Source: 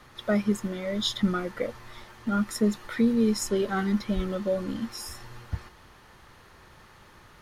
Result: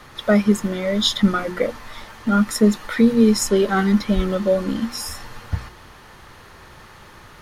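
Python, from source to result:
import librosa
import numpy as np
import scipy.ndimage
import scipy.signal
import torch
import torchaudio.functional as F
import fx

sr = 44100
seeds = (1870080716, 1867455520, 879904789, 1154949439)

y = fx.hum_notches(x, sr, base_hz=60, count=6)
y = y * 10.0 ** (9.0 / 20.0)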